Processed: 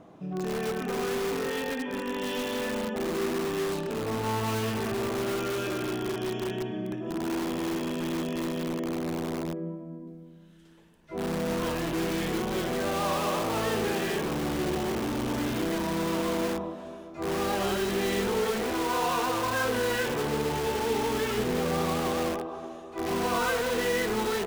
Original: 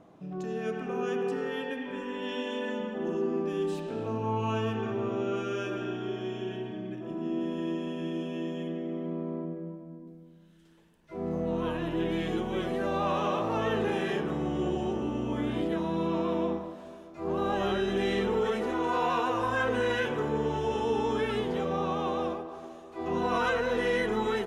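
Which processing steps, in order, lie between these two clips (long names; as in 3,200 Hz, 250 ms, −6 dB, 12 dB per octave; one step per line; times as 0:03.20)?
0:21.38–0:22.36: spectral tilt −1.5 dB per octave
in parallel at −4 dB: wrap-around overflow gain 28.5 dB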